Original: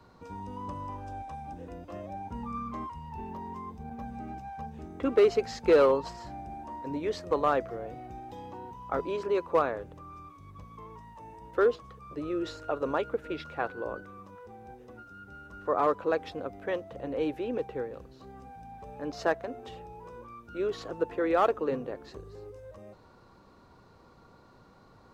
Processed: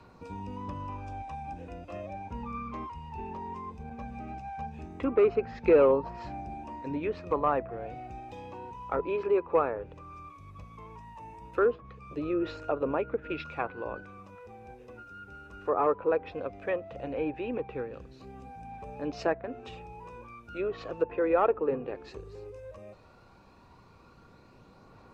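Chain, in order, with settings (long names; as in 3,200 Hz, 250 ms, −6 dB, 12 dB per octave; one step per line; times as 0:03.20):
treble cut that deepens with the level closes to 1,500 Hz, closed at −26.5 dBFS
parametric band 2,500 Hz +11.5 dB 0.2 octaves
phase shifter 0.16 Hz, delay 2.5 ms, feedback 26%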